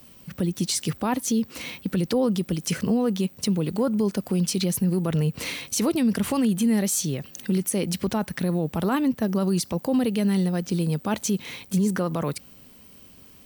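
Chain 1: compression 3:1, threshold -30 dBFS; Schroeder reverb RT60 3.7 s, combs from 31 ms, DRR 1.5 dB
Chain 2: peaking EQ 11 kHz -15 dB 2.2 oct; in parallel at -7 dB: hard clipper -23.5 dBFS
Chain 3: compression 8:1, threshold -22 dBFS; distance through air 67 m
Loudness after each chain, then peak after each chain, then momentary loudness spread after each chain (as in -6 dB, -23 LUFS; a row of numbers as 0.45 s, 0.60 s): -29.5 LUFS, -23.5 LUFS, -28.5 LUFS; -15.0 dBFS, -14.0 dBFS, -16.0 dBFS; 4 LU, 6 LU, 5 LU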